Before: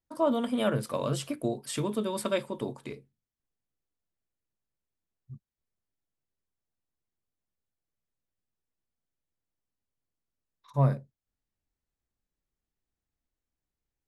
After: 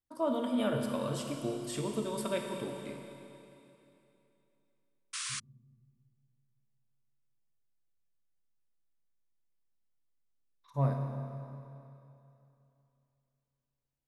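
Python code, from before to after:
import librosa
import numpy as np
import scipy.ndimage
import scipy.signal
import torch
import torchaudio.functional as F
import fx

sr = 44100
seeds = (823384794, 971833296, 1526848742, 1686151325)

y = fx.rev_schroeder(x, sr, rt60_s=2.9, comb_ms=25, drr_db=2.5)
y = fx.spec_paint(y, sr, seeds[0], shape='noise', start_s=5.13, length_s=0.27, low_hz=1000.0, high_hz=10000.0, level_db=-32.0)
y = y * 10.0 ** (-6.0 / 20.0)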